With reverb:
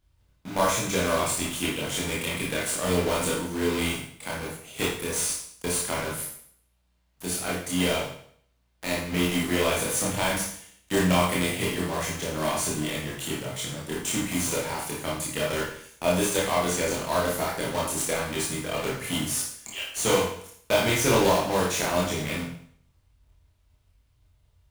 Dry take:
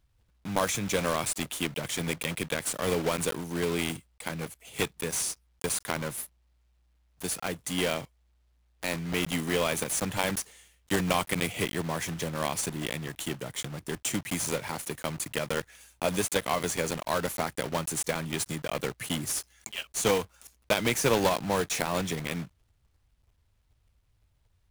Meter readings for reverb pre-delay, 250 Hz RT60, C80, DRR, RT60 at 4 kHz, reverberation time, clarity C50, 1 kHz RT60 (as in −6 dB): 23 ms, 0.60 s, 7.5 dB, −5.0 dB, 0.60 s, 0.60 s, 3.0 dB, 0.60 s